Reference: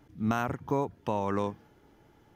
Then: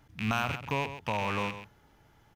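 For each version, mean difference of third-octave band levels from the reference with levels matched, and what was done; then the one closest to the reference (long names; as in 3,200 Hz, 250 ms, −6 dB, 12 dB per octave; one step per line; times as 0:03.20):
6.5 dB: loose part that buzzes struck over −38 dBFS, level −25 dBFS
parametric band 340 Hz −10.5 dB 1.5 octaves
on a send: single-tap delay 134 ms −11.5 dB
on the sum: level +2 dB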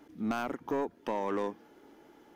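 4.5 dB: low shelf with overshoot 180 Hz −14 dB, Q 1.5
in parallel at −2 dB: downward compressor, threshold −41 dBFS, peak gain reduction 17.5 dB
on the sum: soft clipping −22 dBFS, distortion −12 dB
level −2 dB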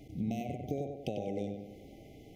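10.5 dB: downward compressor 6 to 1, threshold −41 dBFS, peak gain reduction 16.5 dB
on a send: tape delay 97 ms, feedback 54%, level −3.5 dB, low-pass 2,500 Hz
on the sum: brick-wall band-stop 800–2,000 Hz
level +7.5 dB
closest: second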